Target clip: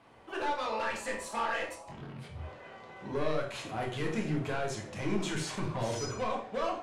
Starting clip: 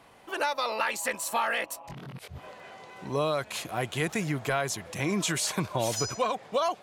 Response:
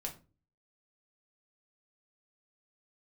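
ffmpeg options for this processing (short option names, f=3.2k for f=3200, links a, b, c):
-filter_complex "[0:a]asoftclip=type=hard:threshold=-27dB,aemphasis=mode=reproduction:type=50kf[a];[1:a]atrim=start_sample=2205,atrim=end_sample=4410,asetrate=22491,aresample=44100[b];[a][b]afir=irnorm=-1:irlink=0,volume=-5dB"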